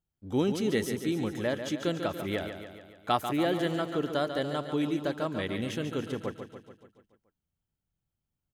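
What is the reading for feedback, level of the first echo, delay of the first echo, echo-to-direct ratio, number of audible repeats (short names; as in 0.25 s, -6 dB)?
58%, -8.5 dB, 0.143 s, -6.5 dB, 6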